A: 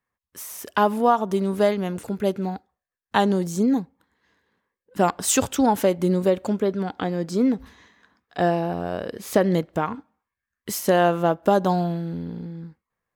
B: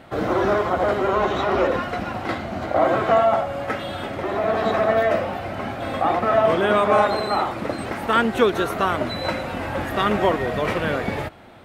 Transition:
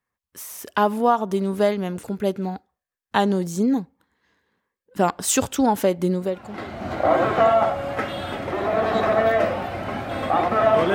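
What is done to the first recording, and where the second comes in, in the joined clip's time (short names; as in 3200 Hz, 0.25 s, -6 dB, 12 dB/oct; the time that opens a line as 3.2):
A
6.49 switch to B from 2.2 s, crossfade 0.88 s quadratic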